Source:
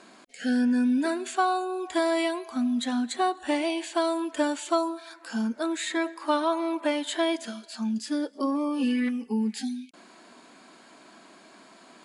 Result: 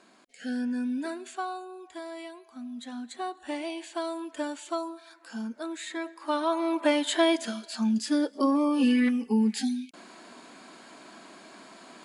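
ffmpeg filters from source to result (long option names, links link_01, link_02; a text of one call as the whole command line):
ffmpeg -i in.wav -af "volume=11dB,afade=type=out:start_time=1.04:duration=0.94:silence=0.398107,afade=type=in:start_time=2.51:duration=1.15:silence=0.398107,afade=type=in:start_time=6.16:duration=0.77:silence=0.316228" out.wav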